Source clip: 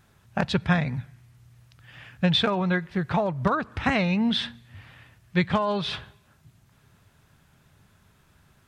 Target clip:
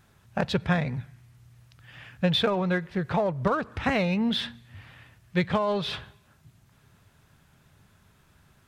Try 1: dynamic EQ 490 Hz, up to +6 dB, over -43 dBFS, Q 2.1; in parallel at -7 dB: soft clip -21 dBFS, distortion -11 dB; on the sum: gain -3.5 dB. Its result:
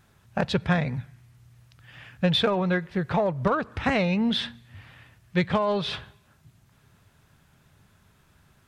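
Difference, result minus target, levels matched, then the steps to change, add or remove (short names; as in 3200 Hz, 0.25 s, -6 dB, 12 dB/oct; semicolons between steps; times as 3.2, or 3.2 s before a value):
soft clip: distortion -7 dB
change: soft clip -33 dBFS, distortion -4 dB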